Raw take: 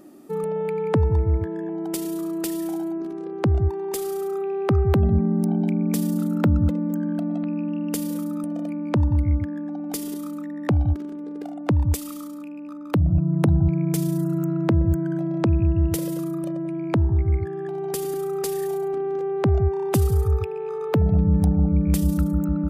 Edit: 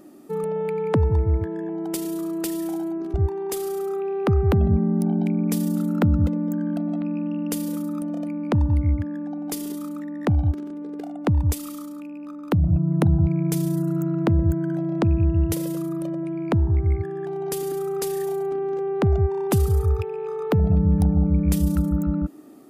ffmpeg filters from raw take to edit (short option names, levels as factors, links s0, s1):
-filter_complex "[0:a]asplit=2[s0][s1];[s0]atrim=end=3.142[s2];[s1]atrim=start=3.558[s3];[s2][s3]acrossfade=d=0.004:c1=hsin:c2=hsin"